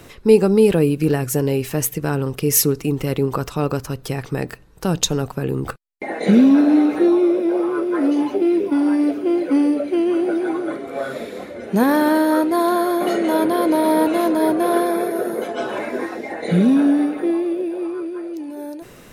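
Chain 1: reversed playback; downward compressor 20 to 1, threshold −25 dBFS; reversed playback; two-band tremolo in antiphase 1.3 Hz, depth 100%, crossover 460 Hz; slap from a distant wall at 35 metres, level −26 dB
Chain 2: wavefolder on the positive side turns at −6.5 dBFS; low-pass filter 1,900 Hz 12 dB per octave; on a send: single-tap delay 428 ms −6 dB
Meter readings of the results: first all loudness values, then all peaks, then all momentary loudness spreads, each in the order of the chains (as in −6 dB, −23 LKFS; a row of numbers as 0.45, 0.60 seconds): −34.5, −18.0 LKFS; −15.0, −1.5 dBFS; 7, 13 LU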